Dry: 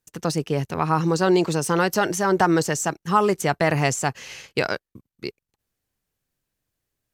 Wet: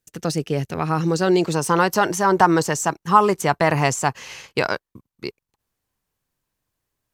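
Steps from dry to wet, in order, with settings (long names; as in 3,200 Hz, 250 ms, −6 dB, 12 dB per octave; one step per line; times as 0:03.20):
parametric band 1,000 Hz −5.5 dB 0.56 octaves, from 0:01.53 +7 dB
level +1 dB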